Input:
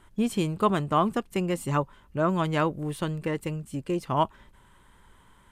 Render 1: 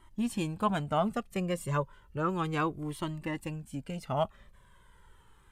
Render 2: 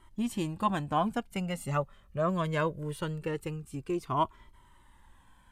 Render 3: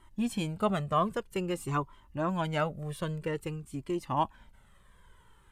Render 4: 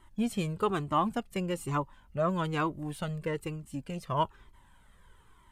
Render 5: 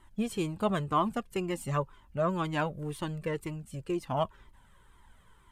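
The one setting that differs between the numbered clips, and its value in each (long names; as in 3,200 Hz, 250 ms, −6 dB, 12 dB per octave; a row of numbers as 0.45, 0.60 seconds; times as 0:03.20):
flanger whose copies keep moving one way, speed: 0.33, 0.22, 0.51, 1.1, 2 Hertz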